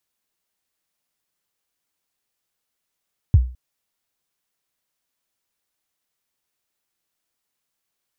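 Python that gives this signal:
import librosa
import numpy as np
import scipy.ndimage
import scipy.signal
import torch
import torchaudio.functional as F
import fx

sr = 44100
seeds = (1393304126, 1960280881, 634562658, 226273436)

y = fx.drum_kick(sr, seeds[0], length_s=0.21, level_db=-5.5, start_hz=120.0, end_hz=62.0, sweep_ms=38.0, decay_s=0.37, click=False)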